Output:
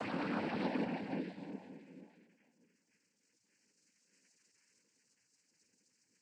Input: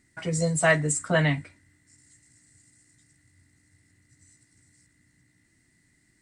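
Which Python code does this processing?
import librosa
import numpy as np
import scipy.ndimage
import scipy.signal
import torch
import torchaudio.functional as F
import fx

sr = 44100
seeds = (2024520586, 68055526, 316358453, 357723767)

y = fx.stiff_resonator(x, sr, f0_hz=280.0, decay_s=0.48, stiffness=0.03)
y = fx.paulstretch(y, sr, seeds[0], factor=4.7, window_s=0.5, from_s=1.19)
y = fx.noise_vocoder(y, sr, seeds[1], bands=8)
y = y * 10.0 ** (3.0 / 20.0)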